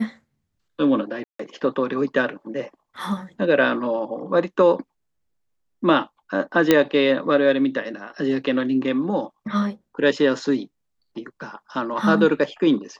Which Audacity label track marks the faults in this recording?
1.240000	1.390000	dropout 154 ms
6.710000	6.710000	pop -2 dBFS

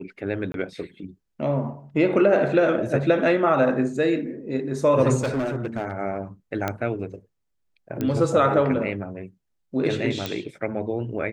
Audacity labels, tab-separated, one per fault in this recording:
0.520000	0.540000	dropout 22 ms
5.200000	5.920000	clipped -21 dBFS
6.680000	6.680000	pop -11 dBFS
8.010000	8.010000	pop -14 dBFS
10.260000	10.260000	pop

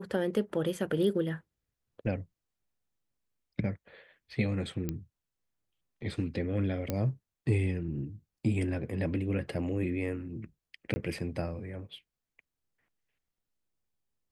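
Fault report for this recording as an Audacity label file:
4.890000	4.890000	pop -19 dBFS
6.900000	6.900000	pop -17 dBFS
10.940000	10.960000	dropout 20 ms

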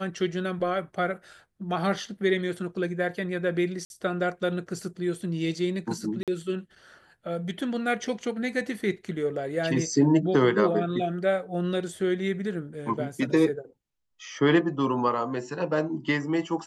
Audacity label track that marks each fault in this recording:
3.850000	3.900000	dropout 51 ms
6.230000	6.280000	dropout 47 ms

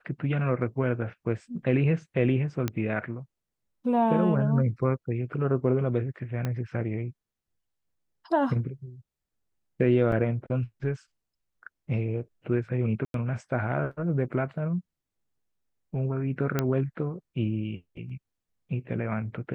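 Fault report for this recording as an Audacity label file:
2.680000	2.680000	pop -14 dBFS
6.450000	6.450000	pop -17 dBFS
10.120000	10.120000	dropout 2.8 ms
13.050000	13.140000	dropout 92 ms
16.590000	16.590000	pop -11 dBFS

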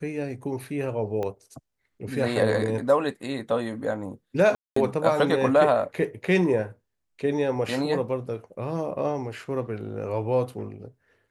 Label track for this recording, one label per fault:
1.230000	1.230000	pop -19 dBFS
4.550000	4.760000	dropout 214 ms

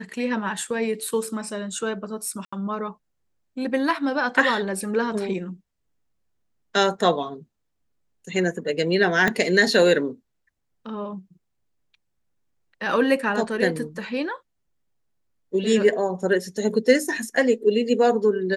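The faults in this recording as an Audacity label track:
2.450000	2.520000	dropout 75 ms
9.280000	9.280000	pop -8 dBFS

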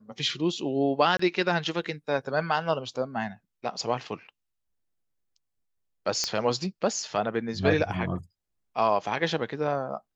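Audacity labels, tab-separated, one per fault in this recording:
1.170000	1.190000	dropout 24 ms
6.240000	6.240000	pop -11 dBFS

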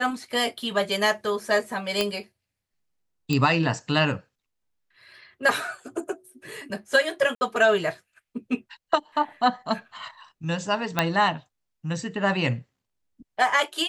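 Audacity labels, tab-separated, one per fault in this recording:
2.010000	2.010000	pop -8 dBFS
3.330000	3.330000	pop -13 dBFS
7.350000	7.410000	dropout 60 ms
10.990000	10.990000	pop -6 dBFS

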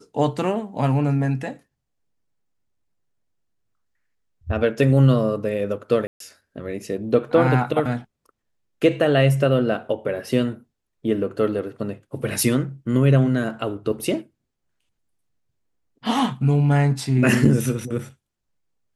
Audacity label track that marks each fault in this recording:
6.070000	6.200000	dropout 133 ms

